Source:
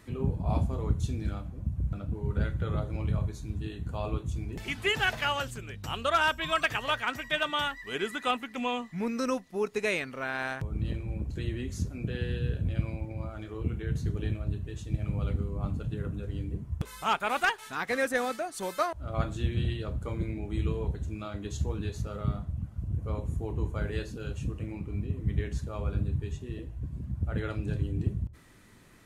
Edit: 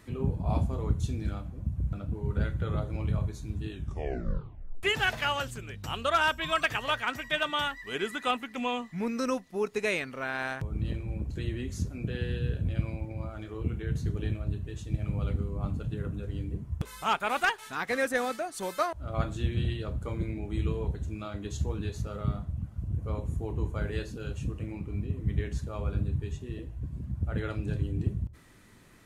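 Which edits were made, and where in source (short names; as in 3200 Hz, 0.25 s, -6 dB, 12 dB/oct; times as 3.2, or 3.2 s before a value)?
3.7 tape stop 1.13 s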